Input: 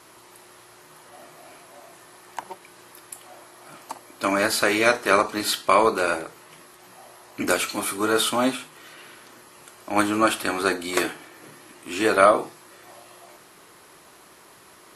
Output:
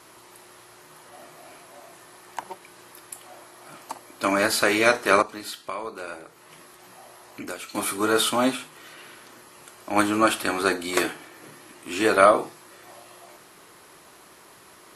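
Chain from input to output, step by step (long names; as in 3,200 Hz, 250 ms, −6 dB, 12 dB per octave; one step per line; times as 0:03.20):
0:05.22–0:07.75: downward compressor 2 to 1, threshold −42 dBFS, peak gain reduction 16 dB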